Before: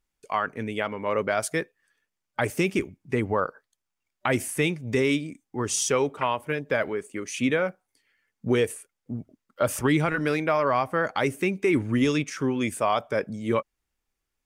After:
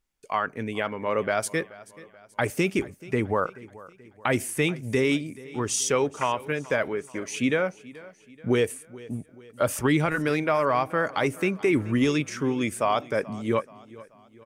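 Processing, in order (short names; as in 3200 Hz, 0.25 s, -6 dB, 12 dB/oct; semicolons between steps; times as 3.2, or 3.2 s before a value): feedback echo 0.431 s, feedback 48%, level -20 dB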